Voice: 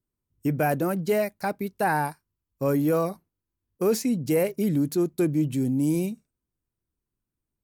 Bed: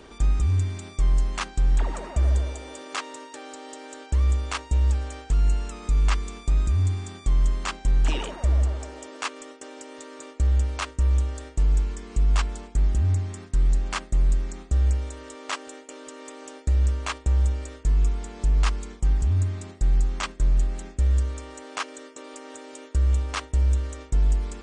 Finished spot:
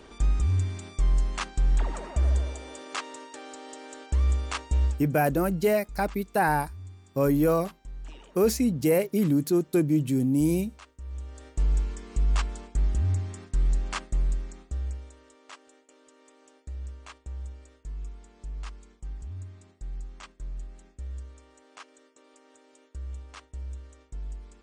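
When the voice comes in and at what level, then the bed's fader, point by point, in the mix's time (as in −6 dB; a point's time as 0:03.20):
4.55 s, +0.5 dB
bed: 0:04.85 −2.5 dB
0:05.09 −20 dB
0:11.00 −20 dB
0:11.61 −3.5 dB
0:14.05 −3.5 dB
0:15.40 −16.5 dB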